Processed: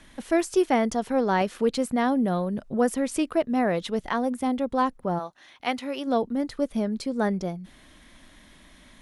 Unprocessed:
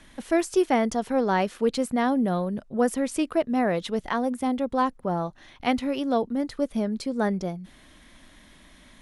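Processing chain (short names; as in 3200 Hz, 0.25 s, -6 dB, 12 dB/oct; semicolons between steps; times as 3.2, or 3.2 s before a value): 1.41–3.25 upward compressor, threshold -24 dBFS; 5.18–6.06 HPF 890 Hz -> 410 Hz 6 dB/oct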